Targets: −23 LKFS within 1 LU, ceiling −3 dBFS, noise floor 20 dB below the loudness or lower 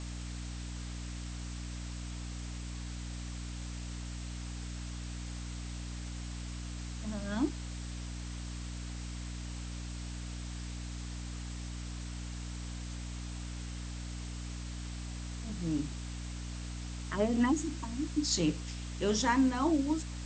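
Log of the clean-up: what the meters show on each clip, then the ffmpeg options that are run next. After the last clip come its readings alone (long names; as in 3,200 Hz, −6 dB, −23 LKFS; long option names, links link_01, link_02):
mains hum 60 Hz; hum harmonics up to 300 Hz; level of the hum −38 dBFS; background noise floor −41 dBFS; target noise floor −58 dBFS; integrated loudness −37.5 LKFS; sample peak −17.5 dBFS; target loudness −23.0 LKFS
→ -af "bandreject=frequency=60:width_type=h:width=4,bandreject=frequency=120:width_type=h:width=4,bandreject=frequency=180:width_type=h:width=4,bandreject=frequency=240:width_type=h:width=4,bandreject=frequency=300:width_type=h:width=4"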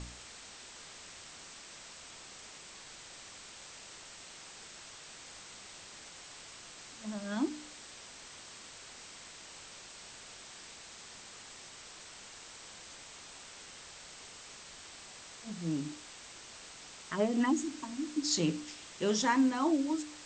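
mains hum none found; background noise floor −51 dBFS; target noise floor −59 dBFS
→ -af "afftdn=noise_reduction=8:noise_floor=-51"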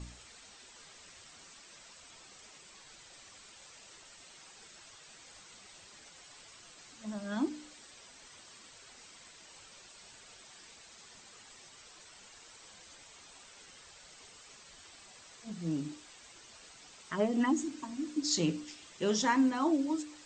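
background noise floor −56 dBFS; integrated loudness −33.0 LKFS; sample peak −17.5 dBFS; target loudness −23.0 LKFS
→ -af "volume=10dB"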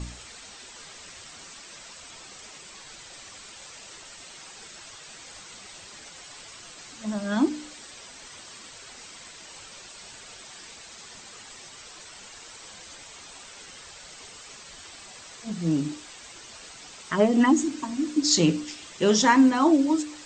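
integrated loudness −23.0 LKFS; sample peak −7.5 dBFS; background noise floor −46 dBFS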